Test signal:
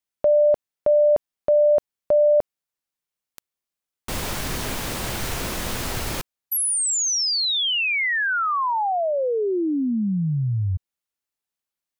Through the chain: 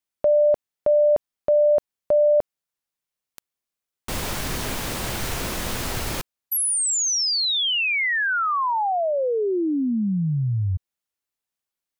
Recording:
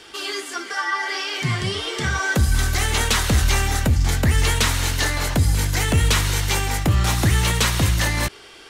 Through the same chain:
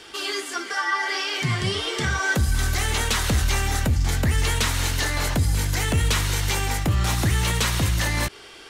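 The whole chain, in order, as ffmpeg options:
-af "alimiter=limit=-13.5dB:level=0:latency=1:release=136"

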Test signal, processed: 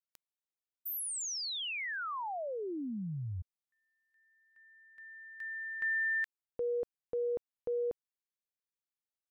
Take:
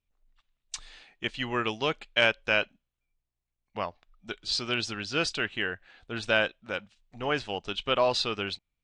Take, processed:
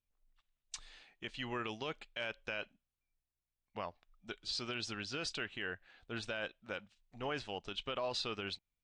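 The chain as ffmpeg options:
-af "alimiter=limit=-22dB:level=0:latency=1:release=46,volume=-7dB"

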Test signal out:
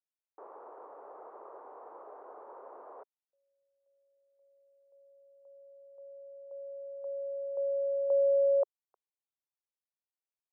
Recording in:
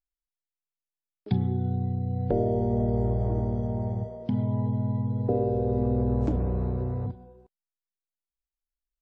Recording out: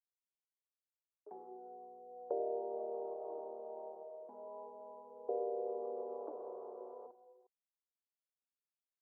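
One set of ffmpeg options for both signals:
-af "asuperpass=centerf=680:order=8:qfactor=0.9,volume=-9dB"

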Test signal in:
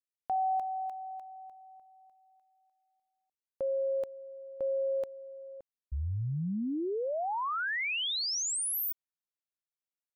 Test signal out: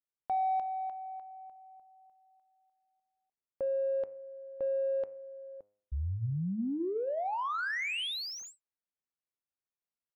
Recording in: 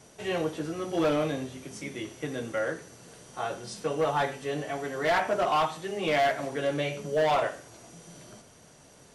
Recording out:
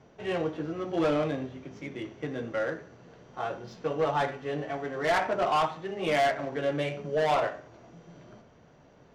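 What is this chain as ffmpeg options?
-af "aresample=16000,aresample=44100,bandreject=f=103.1:t=h:w=4,bandreject=f=206.2:t=h:w=4,bandreject=f=309.3:t=h:w=4,bandreject=f=412.4:t=h:w=4,bandreject=f=515.5:t=h:w=4,bandreject=f=618.6:t=h:w=4,bandreject=f=721.7:t=h:w=4,bandreject=f=824.8:t=h:w=4,bandreject=f=927.9:t=h:w=4,bandreject=f=1.031k:t=h:w=4,bandreject=f=1.1341k:t=h:w=4,bandreject=f=1.2372k:t=h:w=4,bandreject=f=1.3403k:t=h:w=4,bandreject=f=1.4434k:t=h:w=4,bandreject=f=1.5465k:t=h:w=4,bandreject=f=1.6496k:t=h:w=4,bandreject=f=1.7527k:t=h:w=4,bandreject=f=1.8558k:t=h:w=4,bandreject=f=1.9589k:t=h:w=4,bandreject=f=2.062k:t=h:w=4,bandreject=f=2.1651k:t=h:w=4,bandreject=f=2.2682k:t=h:w=4,bandreject=f=2.3713k:t=h:w=4,bandreject=f=2.4744k:t=h:w=4,bandreject=f=2.5775k:t=h:w=4,bandreject=f=2.6806k:t=h:w=4,bandreject=f=2.7837k:t=h:w=4,adynamicsmooth=sensitivity=4:basefreq=2.3k"

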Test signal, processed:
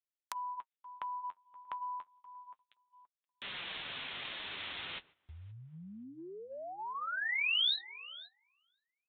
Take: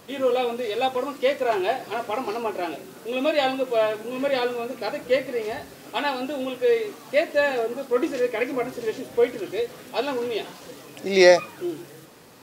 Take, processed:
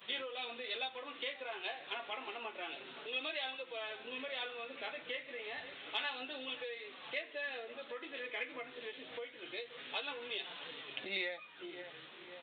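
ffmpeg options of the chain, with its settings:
-filter_complex "[0:a]aresample=8000,aresample=44100,highpass=f=130:p=1,asplit=2[a][b];[b]adelay=525,lowpass=f=1.4k:p=1,volume=-20dB,asplit=2[c][d];[d]adelay=525,lowpass=f=1.4k:p=1,volume=0.35,asplit=2[e][f];[f]adelay=525,lowpass=f=1.4k:p=1,volume=0.35[g];[c][e][g]amix=inputs=3:normalize=0[h];[a][h]amix=inputs=2:normalize=0,flanger=delay=5:depth=7.9:regen=-38:speed=0.29:shape=triangular,acompressor=threshold=-37dB:ratio=5,agate=range=-13dB:threshold=-59dB:ratio=16:detection=peak,crystalizer=i=9:c=0,tiltshelf=f=970:g=-4,volume=-7.5dB"

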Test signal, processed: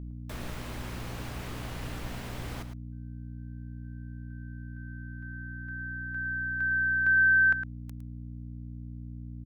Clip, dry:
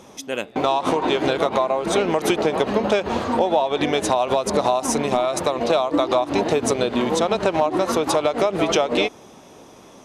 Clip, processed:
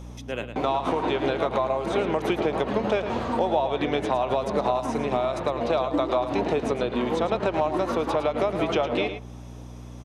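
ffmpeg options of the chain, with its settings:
-filter_complex "[0:a]acrossover=split=160|3600[a][b][c];[c]acompressor=threshold=-46dB:ratio=10[d];[a][b][d]amix=inputs=3:normalize=0,aeval=exprs='val(0)+0.0224*(sin(2*PI*60*n/s)+sin(2*PI*2*60*n/s)/2+sin(2*PI*3*60*n/s)/3+sin(2*PI*4*60*n/s)/4+sin(2*PI*5*60*n/s)/5)':c=same,aecho=1:1:109:0.316,volume=-5dB"

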